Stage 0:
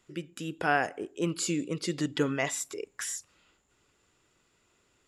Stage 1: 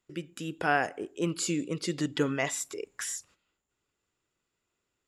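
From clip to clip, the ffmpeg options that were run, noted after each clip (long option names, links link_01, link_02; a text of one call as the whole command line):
ffmpeg -i in.wav -af "agate=range=-13dB:threshold=-56dB:ratio=16:detection=peak" out.wav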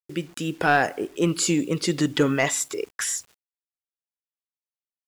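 ffmpeg -i in.wav -af "asoftclip=type=tanh:threshold=-17dB,acrusher=bits=9:mix=0:aa=0.000001,volume=8.5dB" out.wav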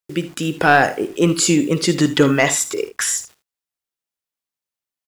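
ffmpeg -i in.wav -af "aecho=1:1:57|78:0.168|0.158,volume=6.5dB" out.wav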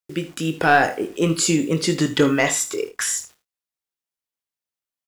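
ffmpeg -i in.wav -filter_complex "[0:a]asplit=2[link_01][link_02];[link_02]adelay=25,volume=-9dB[link_03];[link_01][link_03]amix=inputs=2:normalize=0,volume=-3.5dB" out.wav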